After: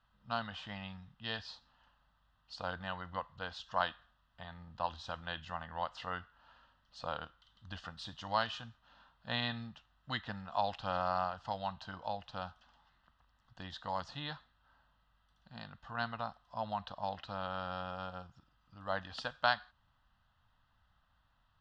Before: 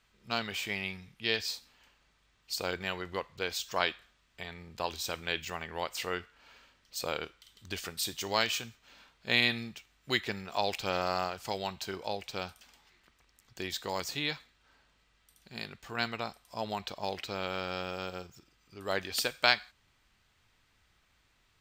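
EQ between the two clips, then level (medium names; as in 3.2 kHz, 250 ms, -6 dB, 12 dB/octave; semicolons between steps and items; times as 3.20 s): four-pole ladder low-pass 3.5 kHz, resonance 30%; static phaser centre 950 Hz, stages 4; +6.5 dB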